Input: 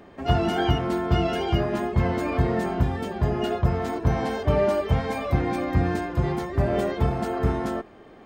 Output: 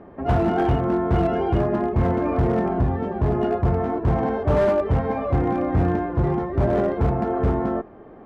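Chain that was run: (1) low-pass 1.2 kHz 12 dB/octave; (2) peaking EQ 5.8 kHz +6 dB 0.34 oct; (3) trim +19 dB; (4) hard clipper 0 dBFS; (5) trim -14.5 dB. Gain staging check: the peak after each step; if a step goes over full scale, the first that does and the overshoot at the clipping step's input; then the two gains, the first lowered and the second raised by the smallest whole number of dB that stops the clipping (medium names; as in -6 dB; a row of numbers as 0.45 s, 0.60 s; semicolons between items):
-9.5 dBFS, -9.5 dBFS, +9.5 dBFS, 0.0 dBFS, -14.5 dBFS; step 3, 9.5 dB; step 3 +9 dB, step 5 -4.5 dB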